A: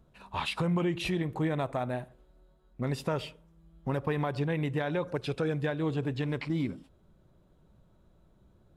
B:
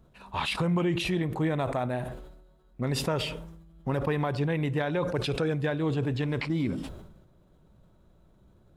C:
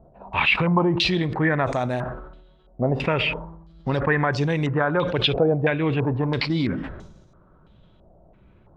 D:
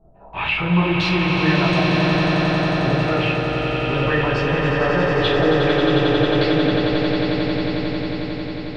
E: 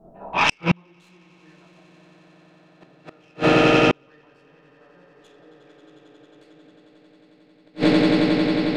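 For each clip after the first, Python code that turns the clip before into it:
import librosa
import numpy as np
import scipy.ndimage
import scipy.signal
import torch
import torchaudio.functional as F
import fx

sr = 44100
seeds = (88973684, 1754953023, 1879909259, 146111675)

y1 = fx.sustainer(x, sr, db_per_s=52.0)
y1 = y1 * librosa.db_to_amplitude(2.0)
y2 = fx.filter_held_lowpass(y1, sr, hz=3.0, low_hz=700.0, high_hz=6100.0)
y2 = y2 * librosa.db_to_amplitude(5.0)
y3 = fx.echo_swell(y2, sr, ms=90, loudest=8, wet_db=-6.5)
y3 = fx.room_shoebox(y3, sr, seeds[0], volume_m3=53.0, walls='mixed', distance_m=1.2)
y3 = y3 * librosa.db_to_amplitude(-8.0)
y4 = fx.tracing_dist(y3, sr, depth_ms=0.087)
y4 = fx.low_shelf_res(y4, sr, hz=140.0, db=-11.5, q=1.5)
y4 = fx.gate_flip(y4, sr, shuts_db=-11.0, range_db=-41)
y4 = y4 * librosa.db_to_amplitude(6.5)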